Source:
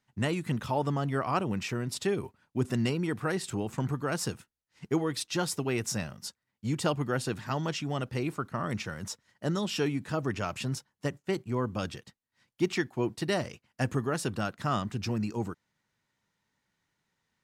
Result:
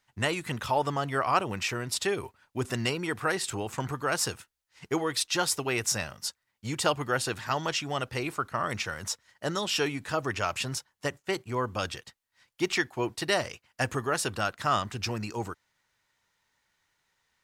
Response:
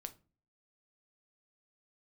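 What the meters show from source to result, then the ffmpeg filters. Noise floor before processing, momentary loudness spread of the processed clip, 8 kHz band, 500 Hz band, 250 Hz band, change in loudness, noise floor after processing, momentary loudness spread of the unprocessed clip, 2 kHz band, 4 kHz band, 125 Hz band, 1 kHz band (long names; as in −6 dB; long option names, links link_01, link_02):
−84 dBFS, 8 LU, +6.5 dB, +1.0 dB, −3.5 dB, +2.0 dB, −80 dBFS, 7 LU, +6.0 dB, +6.5 dB, −3.5 dB, +5.0 dB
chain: -af "equalizer=frequency=190:width_type=o:width=2.1:gain=-13,volume=6.5dB"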